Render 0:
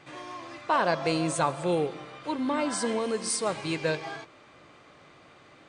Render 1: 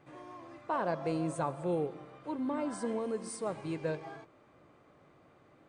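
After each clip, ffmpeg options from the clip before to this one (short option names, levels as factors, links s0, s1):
-af "equalizer=f=4400:w=0.37:g=-14,volume=0.596"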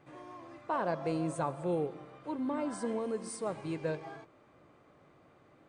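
-af anull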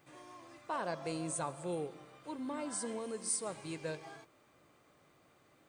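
-af "crystalizer=i=5:c=0,volume=0.473"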